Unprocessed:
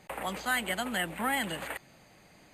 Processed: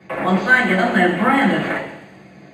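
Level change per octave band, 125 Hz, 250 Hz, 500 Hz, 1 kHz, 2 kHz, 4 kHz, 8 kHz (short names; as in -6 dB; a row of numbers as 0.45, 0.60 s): +20.5 dB, +20.0 dB, +18.0 dB, +14.5 dB, +16.5 dB, +6.5 dB, n/a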